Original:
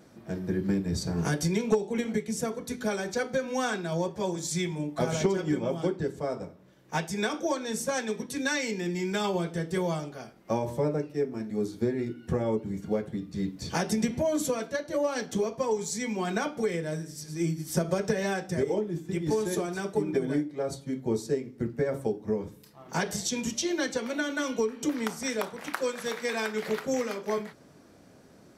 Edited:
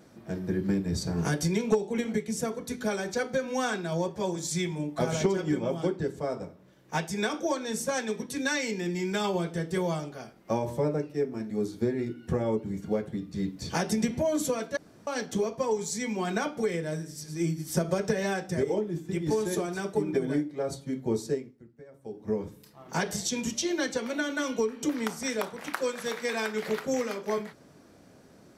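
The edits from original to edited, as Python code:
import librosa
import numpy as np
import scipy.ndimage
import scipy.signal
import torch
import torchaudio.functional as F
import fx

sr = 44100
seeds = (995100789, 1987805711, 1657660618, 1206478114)

y = fx.edit(x, sr, fx.room_tone_fill(start_s=14.77, length_s=0.3),
    fx.fade_down_up(start_s=21.29, length_s=1.05, db=-21.5, fade_s=0.32), tone=tone)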